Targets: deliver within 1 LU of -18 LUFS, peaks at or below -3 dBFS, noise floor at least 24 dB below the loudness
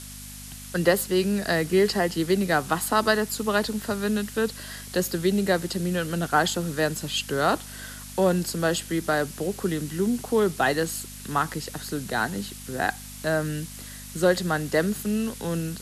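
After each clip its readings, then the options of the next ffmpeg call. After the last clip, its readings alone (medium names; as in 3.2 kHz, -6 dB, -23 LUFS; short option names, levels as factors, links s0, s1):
hum 50 Hz; highest harmonic 250 Hz; hum level -42 dBFS; noise floor -41 dBFS; noise floor target -50 dBFS; loudness -25.5 LUFS; peak level -7.0 dBFS; loudness target -18.0 LUFS
-> -af "bandreject=f=50:t=h:w=4,bandreject=f=100:t=h:w=4,bandreject=f=150:t=h:w=4,bandreject=f=200:t=h:w=4,bandreject=f=250:t=h:w=4"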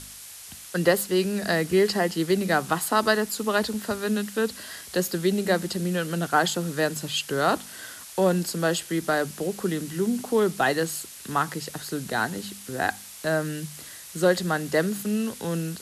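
hum not found; noise floor -43 dBFS; noise floor target -50 dBFS
-> -af "afftdn=nr=7:nf=-43"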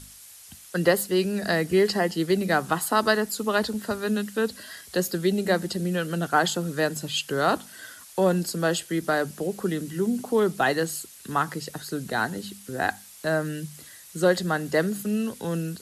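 noise floor -47 dBFS; noise floor target -50 dBFS
-> -af "afftdn=nr=6:nf=-47"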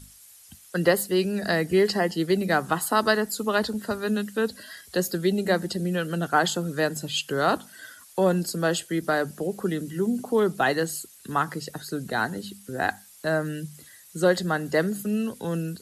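noise floor -51 dBFS; loudness -25.5 LUFS; peak level -7.0 dBFS; loudness target -18.0 LUFS
-> -af "volume=2.37,alimiter=limit=0.708:level=0:latency=1"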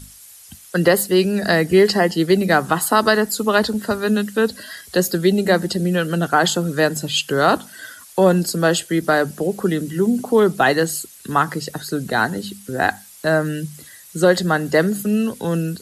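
loudness -18.5 LUFS; peak level -3.0 dBFS; noise floor -43 dBFS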